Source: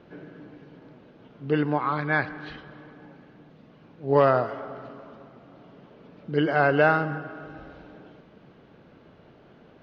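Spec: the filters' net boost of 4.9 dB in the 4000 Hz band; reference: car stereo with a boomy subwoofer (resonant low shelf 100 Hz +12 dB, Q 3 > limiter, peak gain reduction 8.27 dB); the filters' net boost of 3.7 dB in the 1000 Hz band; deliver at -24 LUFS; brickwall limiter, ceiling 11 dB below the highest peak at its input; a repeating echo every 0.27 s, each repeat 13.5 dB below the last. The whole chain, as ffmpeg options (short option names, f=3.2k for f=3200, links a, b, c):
-af "equalizer=f=1k:t=o:g=5,equalizer=f=4k:t=o:g=7,alimiter=limit=-15dB:level=0:latency=1,lowshelf=f=100:t=q:w=3:g=12,aecho=1:1:270|540:0.211|0.0444,volume=11dB,alimiter=limit=-11.5dB:level=0:latency=1"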